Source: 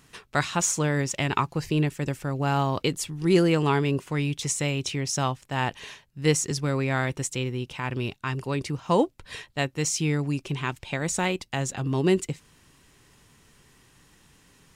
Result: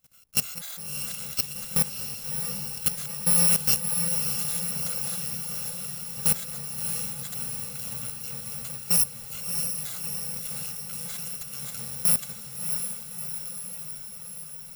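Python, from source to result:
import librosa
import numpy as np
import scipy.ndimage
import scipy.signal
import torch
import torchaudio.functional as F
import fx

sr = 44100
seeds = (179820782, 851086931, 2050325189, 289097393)

y = fx.bit_reversed(x, sr, seeds[0], block=128)
y = fx.high_shelf(y, sr, hz=4400.0, db=5.0)
y = fx.level_steps(y, sr, step_db=18)
y = fx.echo_diffused(y, sr, ms=652, feedback_pct=68, wet_db=-5.5)
y = F.gain(torch.from_numpy(y), -1.5).numpy()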